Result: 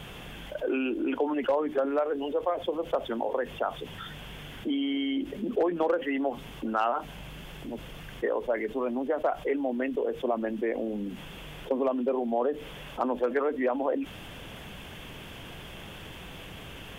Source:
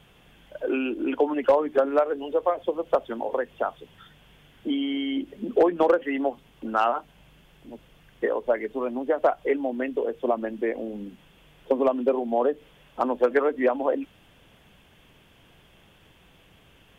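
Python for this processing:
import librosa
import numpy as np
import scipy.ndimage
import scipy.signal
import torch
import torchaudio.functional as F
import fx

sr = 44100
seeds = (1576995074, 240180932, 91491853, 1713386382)

y = fx.env_flatten(x, sr, amount_pct=50)
y = F.gain(torch.from_numpy(y), -8.0).numpy()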